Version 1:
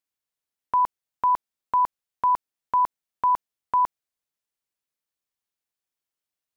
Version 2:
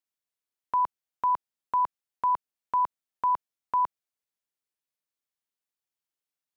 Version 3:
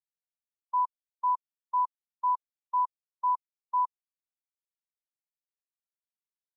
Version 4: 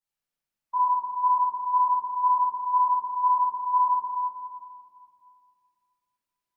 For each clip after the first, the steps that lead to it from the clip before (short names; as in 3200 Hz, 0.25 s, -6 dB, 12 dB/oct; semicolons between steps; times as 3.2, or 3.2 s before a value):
low shelf 61 Hz -9 dB; gain -4 dB
Bessel low-pass 1300 Hz; spectral expander 1.5:1
reverb RT60 2.4 s, pre-delay 5 ms, DRR -10 dB; gain -1 dB